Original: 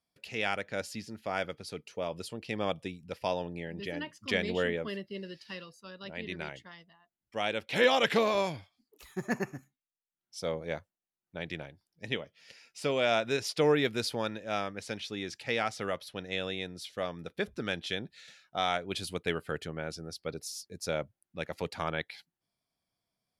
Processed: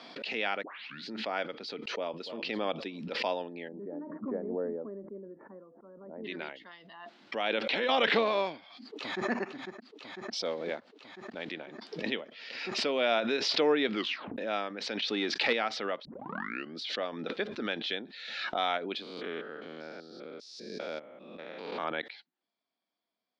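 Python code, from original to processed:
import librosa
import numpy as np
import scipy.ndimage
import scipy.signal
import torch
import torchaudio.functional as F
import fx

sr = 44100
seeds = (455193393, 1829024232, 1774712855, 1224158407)

y = fx.echo_throw(x, sr, start_s=1.91, length_s=0.51, ms=290, feedback_pct=25, wet_db=-13.5)
y = fx.gaussian_blur(y, sr, sigma=9.6, at=(3.67, 6.24), fade=0.02)
y = fx.over_compress(y, sr, threshold_db=-33.0, ratio=-1.0, at=(7.49, 7.89))
y = fx.echo_throw(y, sr, start_s=8.54, length_s=0.75, ms=500, feedback_pct=75, wet_db=-5.0)
y = fx.block_float(y, sr, bits=5, at=(10.45, 11.54))
y = fx.leveller(y, sr, passes=2, at=(15.02, 15.53))
y = fx.spec_steps(y, sr, hold_ms=200, at=(19.02, 21.84))
y = fx.edit(y, sr, fx.tape_start(start_s=0.63, length_s=0.48),
    fx.tape_stop(start_s=13.92, length_s=0.46),
    fx.tape_start(start_s=16.05, length_s=0.76), tone=tone)
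y = scipy.signal.sosfilt(scipy.signal.ellip(3, 1.0, 60, [240.0, 4200.0], 'bandpass', fs=sr, output='sos'), y)
y = fx.pre_swell(y, sr, db_per_s=41.0)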